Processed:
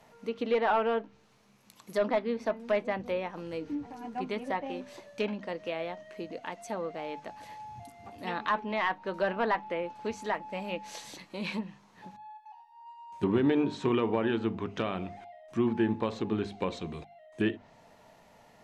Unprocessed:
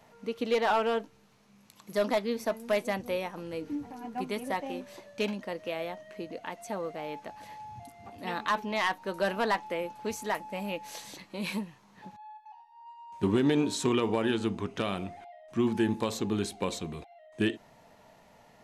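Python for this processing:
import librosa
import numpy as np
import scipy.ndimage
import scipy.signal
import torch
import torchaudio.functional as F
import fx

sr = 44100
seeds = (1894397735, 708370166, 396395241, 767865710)

y = fx.hum_notches(x, sr, base_hz=50, count=5)
y = fx.env_lowpass_down(y, sr, base_hz=2500.0, full_db=-27.5)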